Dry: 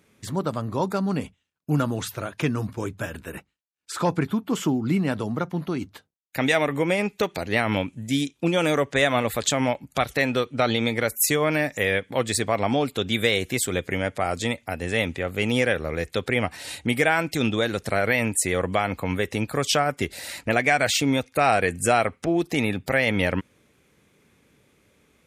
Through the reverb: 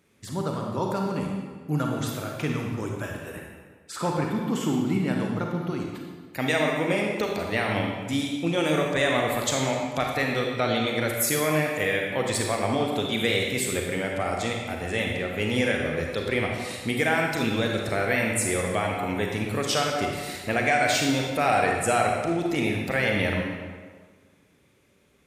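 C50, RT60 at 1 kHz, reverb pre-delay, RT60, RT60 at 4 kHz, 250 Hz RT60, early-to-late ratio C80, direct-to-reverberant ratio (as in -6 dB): 1.5 dB, 1.5 s, 33 ms, 1.5 s, 1.1 s, 1.5 s, 3.5 dB, 0.0 dB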